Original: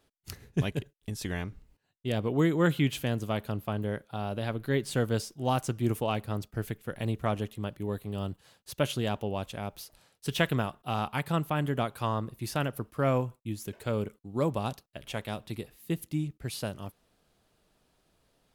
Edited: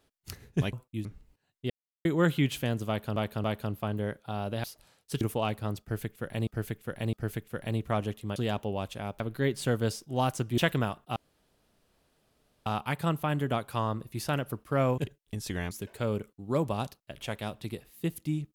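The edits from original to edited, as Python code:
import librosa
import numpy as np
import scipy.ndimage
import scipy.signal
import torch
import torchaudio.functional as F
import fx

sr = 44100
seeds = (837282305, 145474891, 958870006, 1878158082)

y = fx.edit(x, sr, fx.swap(start_s=0.73, length_s=0.73, other_s=13.25, other_length_s=0.32),
    fx.silence(start_s=2.11, length_s=0.35),
    fx.repeat(start_s=3.29, length_s=0.28, count=3),
    fx.swap(start_s=4.49, length_s=1.38, other_s=9.78, other_length_s=0.57),
    fx.repeat(start_s=6.47, length_s=0.66, count=3),
    fx.cut(start_s=7.7, length_s=1.24),
    fx.insert_room_tone(at_s=10.93, length_s=1.5), tone=tone)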